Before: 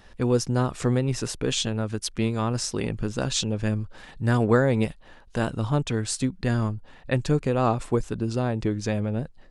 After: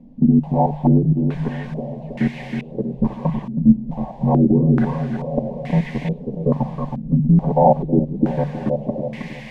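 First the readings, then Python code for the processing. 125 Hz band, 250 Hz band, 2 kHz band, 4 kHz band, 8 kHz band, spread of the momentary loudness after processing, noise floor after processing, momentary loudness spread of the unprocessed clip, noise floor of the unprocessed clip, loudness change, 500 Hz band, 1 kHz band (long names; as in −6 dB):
+6.0 dB, +9.0 dB, −3.5 dB, below −10 dB, below −25 dB, 12 LU, −35 dBFS, 7 LU, −50 dBFS, +6.5 dB, +4.0 dB, +8.0 dB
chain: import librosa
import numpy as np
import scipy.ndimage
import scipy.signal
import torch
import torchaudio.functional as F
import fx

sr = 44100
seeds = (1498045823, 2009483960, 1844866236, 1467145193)

p1 = fx.partial_stretch(x, sr, pct=77)
p2 = fx.recorder_agc(p1, sr, target_db=-16.5, rise_db_per_s=9.5, max_gain_db=30)
p3 = p2 + 0.85 * np.pad(p2, (int(5.5 * sr / 1000.0), 0))[:len(p2)]
p4 = 10.0 ** (-20.0 / 20.0) * np.tanh(p3 / 10.0 ** (-20.0 / 20.0))
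p5 = p3 + (p4 * librosa.db_to_amplitude(-6.5))
p6 = fx.level_steps(p5, sr, step_db=19)
p7 = fx.low_shelf(p6, sr, hz=220.0, db=5.0)
p8 = fx.hum_notches(p7, sr, base_hz=50, count=3)
p9 = fx.quant_dither(p8, sr, seeds[0], bits=6, dither='triangular')
p10 = fx.fixed_phaser(p9, sr, hz=360.0, stages=6)
p11 = p10 + fx.echo_feedback(p10, sr, ms=320, feedback_pct=55, wet_db=-6.5, dry=0)
p12 = fx.filter_held_lowpass(p11, sr, hz=2.3, low_hz=250.0, high_hz=2000.0)
y = p12 * librosa.db_to_amplitude(3.5)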